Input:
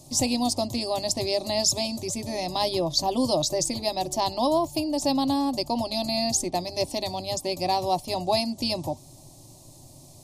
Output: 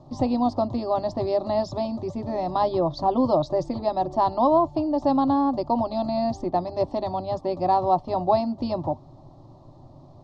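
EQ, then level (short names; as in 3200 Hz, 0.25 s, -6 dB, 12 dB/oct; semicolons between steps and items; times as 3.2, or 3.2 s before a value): LPF 3900 Hz 24 dB/oct; resonant high shelf 1800 Hz -9.5 dB, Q 3; +2.5 dB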